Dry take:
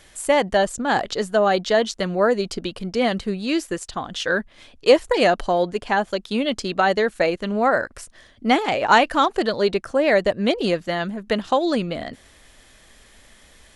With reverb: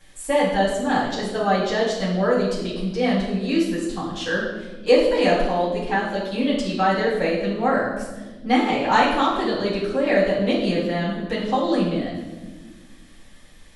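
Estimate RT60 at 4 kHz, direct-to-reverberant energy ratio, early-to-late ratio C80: 1.0 s, −9.0 dB, 5.5 dB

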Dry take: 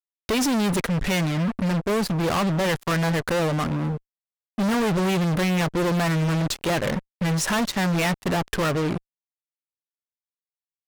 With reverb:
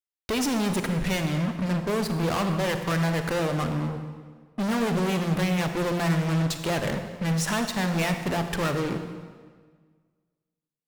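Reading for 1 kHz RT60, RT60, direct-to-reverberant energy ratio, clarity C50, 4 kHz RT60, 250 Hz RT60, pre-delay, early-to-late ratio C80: 1.6 s, 1.6 s, 6.5 dB, 7.0 dB, 1.3 s, 1.7 s, 34 ms, 8.5 dB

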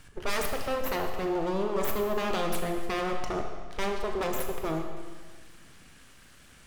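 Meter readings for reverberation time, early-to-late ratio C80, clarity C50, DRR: 1.6 s, 6.0 dB, 5.0 dB, 3.0 dB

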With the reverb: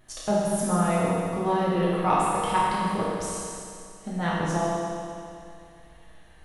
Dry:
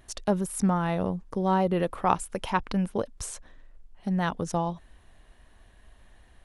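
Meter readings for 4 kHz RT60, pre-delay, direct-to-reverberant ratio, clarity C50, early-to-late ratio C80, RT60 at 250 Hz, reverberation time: 2.4 s, 6 ms, −8.0 dB, −3.0 dB, −1.0 dB, 2.4 s, 2.4 s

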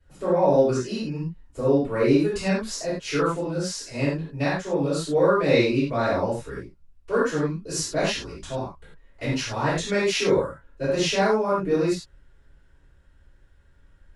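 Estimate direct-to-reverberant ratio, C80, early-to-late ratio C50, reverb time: −13.0 dB, 5.0 dB, 0.0 dB, non-exponential decay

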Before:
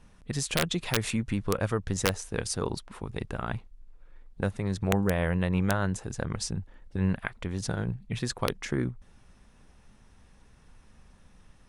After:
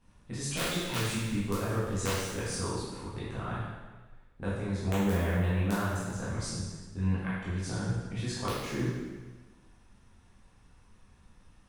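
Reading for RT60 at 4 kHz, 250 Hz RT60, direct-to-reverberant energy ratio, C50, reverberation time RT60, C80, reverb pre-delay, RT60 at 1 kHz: 1.2 s, 1.2 s, −10.0 dB, −1.5 dB, 1.3 s, 1.5 dB, 6 ms, 1.3 s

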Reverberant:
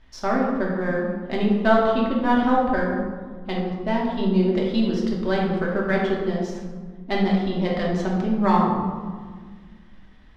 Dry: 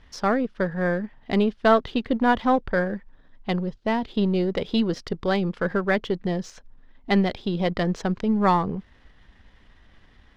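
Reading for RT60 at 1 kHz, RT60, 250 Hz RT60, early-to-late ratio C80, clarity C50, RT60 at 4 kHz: 1.5 s, 1.6 s, 2.4 s, 3.5 dB, 1.5 dB, 0.80 s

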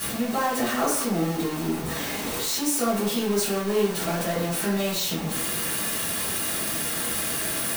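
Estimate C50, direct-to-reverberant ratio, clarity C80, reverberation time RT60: 3.5 dB, −12.0 dB, 7.5 dB, 0.65 s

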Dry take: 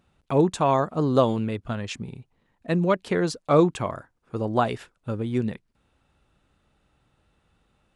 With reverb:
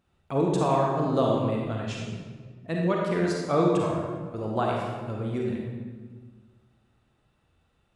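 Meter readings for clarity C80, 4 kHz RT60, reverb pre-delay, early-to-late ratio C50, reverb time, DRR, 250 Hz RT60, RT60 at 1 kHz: 2.0 dB, 1.0 s, 34 ms, −0.5 dB, 1.5 s, −2.5 dB, 1.8 s, 1.4 s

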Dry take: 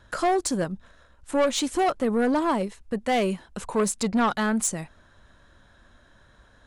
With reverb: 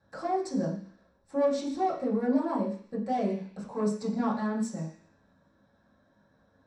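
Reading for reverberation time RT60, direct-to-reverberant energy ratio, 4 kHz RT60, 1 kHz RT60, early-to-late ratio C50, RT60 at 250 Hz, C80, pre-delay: 0.50 s, −7.0 dB, 0.85 s, 0.50 s, 7.0 dB, 0.50 s, 10.0 dB, 3 ms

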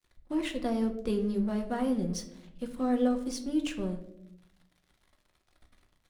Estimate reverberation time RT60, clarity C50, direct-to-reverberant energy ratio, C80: 0.80 s, 11.5 dB, 4.5 dB, 14.0 dB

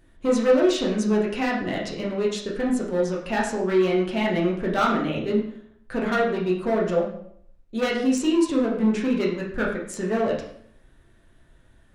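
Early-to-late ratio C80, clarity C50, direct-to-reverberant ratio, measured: 8.5 dB, 5.5 dB, −4.0 dB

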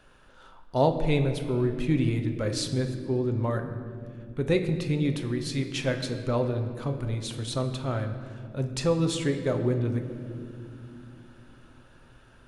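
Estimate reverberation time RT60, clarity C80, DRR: 2.5 s, 10.0 dB, 5.5 dB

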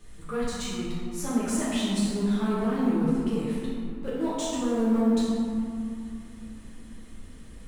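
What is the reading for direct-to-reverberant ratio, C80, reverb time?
−10.0 dB, −0.5 dB, 2.5 s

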